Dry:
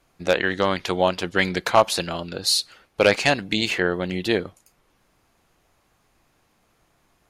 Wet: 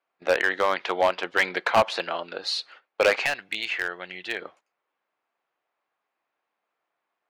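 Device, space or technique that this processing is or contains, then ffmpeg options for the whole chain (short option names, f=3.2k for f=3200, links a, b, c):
walkie-talkie: -filter_complex "[0:a]highpass=570,lowpass=2.6k,asoftclip=type=hard:threshold=-15.5dB,agate=range=-15dB:threshold=-50dB:ratio=16:detection=peak,asettb=1/sr,asplit=3[a][b][c];[a]atrim=end=3.264[d];[b]atrim=start=3.26:end=4.42,asetpts=PTS-STARTPTS,afade=t=in:d=0.004:c=qsin,afade=t=out:st=1.156:d=0.004:c=qsin,equalizer=f=250:t=o:w=1:g=-10,equalizer=f=500:t=o:w=1:g=-9,equalizer=f=1k:t=o:w=1:g=-8,equalizer=f=4k:t=o:w=1:g=-3[e];[c]atrim=start=4.416[f];[d][e]acrossfade=d=0.004:c1=hsin:c2=qsin[g];[g][f]acrossfade=d=0.004:c1=qsin:c2=hsin,volume=2.5dB"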